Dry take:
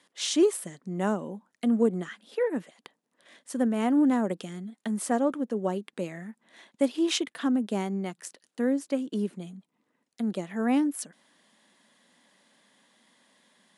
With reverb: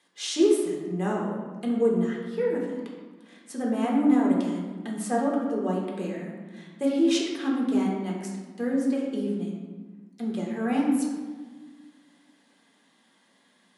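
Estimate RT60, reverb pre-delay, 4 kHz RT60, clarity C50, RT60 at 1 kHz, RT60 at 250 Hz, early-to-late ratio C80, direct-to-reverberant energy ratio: 1.4 s, 4 ms, 0.90 s, 2.0 dB, 1.4 s, 2.0 s, 4.0 dB, -3.0 dB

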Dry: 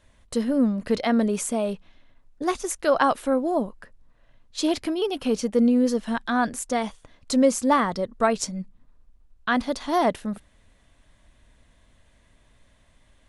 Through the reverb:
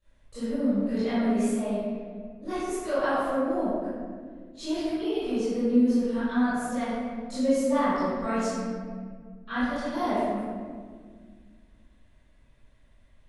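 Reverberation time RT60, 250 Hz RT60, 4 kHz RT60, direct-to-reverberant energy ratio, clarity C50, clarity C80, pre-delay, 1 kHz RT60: 1.8 s, 2.7 s, 1.0 s, -17.5 dB, -6.0 dB, -1.5 dB, 18 ms, 1.5 s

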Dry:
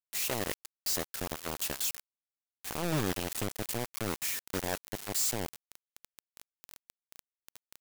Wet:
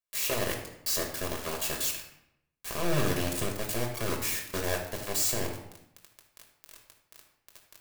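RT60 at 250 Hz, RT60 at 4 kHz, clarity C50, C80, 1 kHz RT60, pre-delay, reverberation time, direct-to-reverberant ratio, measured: 0.95 s, 0.60 s, 5.5 dB, 8.5 dB, 0.75 s, 5 ms, 0.75 s, 0.0 dB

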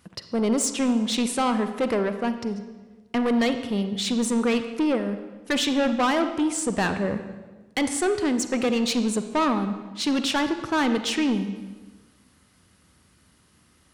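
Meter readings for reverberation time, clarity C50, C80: 1.3 s, 9.5 dB, 11.0 dB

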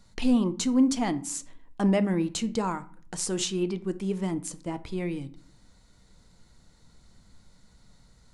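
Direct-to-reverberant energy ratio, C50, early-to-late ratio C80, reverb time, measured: 11.5 dB, 18.0 dB, 22.5 dB, 0.50 s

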